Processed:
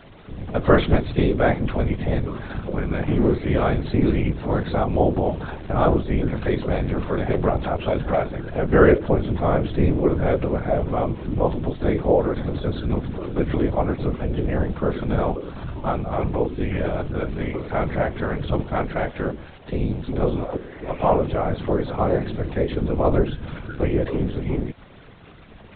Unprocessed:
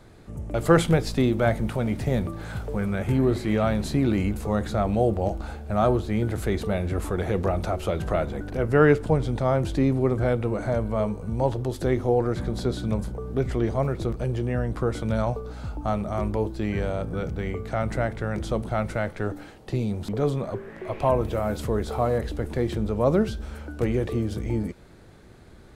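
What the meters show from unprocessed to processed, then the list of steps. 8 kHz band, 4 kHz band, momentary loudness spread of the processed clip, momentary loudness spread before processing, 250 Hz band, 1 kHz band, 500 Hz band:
below −35 dB, +1.0 dB, 8 LU, 8 LU, +2.5 dB, +3.5 dB, +3.0 dB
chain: bit-depth reduction 8 bits, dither none
linear-prediction vocoder at 8 kHz pitch kept
random phases in short frames
level +3.5 dB

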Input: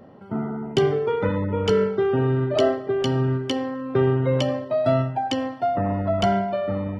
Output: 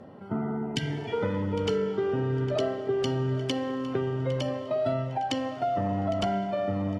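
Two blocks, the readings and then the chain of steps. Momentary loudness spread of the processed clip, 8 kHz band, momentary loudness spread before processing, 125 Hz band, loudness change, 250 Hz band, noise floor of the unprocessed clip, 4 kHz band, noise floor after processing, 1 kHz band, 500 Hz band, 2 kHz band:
3 LU, can't be measured, 5 LU, −6.0 dB, −6.0 dB, −5.0 dB, −38 dBFS, −4.5 dB, −38 dBFS, −5.5 dB, −6.5 dB, −5.5 dB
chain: healed spectral selection 0:00.76–0:01.11, 320–1,500 Hz before
downward compressor 4 to 1, threshold −26 dBFS, peak gain reduction 10 dB
repeating echo 807 ms, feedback 30%, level −16 dB
four-comb reverb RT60 3.7 s, combs from 30 ms, DRR 13.5 dB
Ogg Vorbis 32 kbit/s 32,000 Hz

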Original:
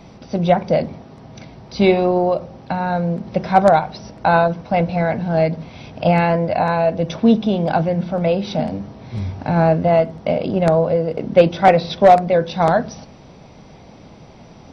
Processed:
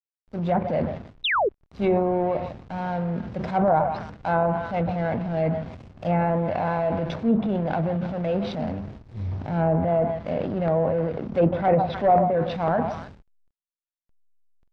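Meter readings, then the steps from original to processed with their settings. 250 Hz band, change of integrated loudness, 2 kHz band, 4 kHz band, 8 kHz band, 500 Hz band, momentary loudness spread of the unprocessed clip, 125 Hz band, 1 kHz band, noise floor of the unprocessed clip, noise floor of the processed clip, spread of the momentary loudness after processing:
−6.0 dB, −7.0 dB, −7.0 dB, −5.5 dB, can't be measured, −7.5 dB, 12 LU, −5.5 dB, −7.5 dB, −43 dBFS, below −85 dBFS, 10 LU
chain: parametric band 85 Hz +5.5 dB 0.47 octaves
echo through a band-pass that steps 152 ms, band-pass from 870 Hz, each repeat 0.7 octaves, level −10.5 dB
transient designer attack −6 dB, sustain +7 dB
slack as between gear wheels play −25 dBFS
sound drawn into the spectrogram fall, 0:01.24–0:01.49, 350–4,000 Hz −14 dBFS
treble cut that deepens with the level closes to 1,300 Hz, closed at −10 dBFS
high-frequency loss of the air 58 metres
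level −6.5 dB

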